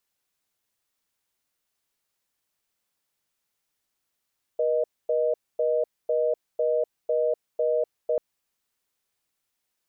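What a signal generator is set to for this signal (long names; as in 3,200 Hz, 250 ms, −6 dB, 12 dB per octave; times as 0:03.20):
call progress tone reorder tone, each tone −23.5 dBFS 3.59 s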